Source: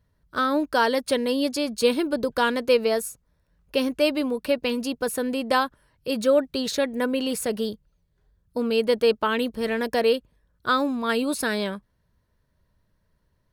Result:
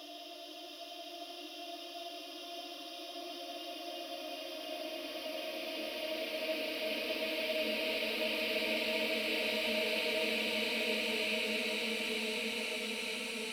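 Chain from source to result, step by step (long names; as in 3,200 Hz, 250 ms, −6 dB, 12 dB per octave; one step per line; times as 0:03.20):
source passing by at 0:04.02, 46 m/s, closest 4 metres
tilt shelving filter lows −7 dB
extreme stretch with random phases 13×, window 1.00 s, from 0:03.28
level −4.5 dB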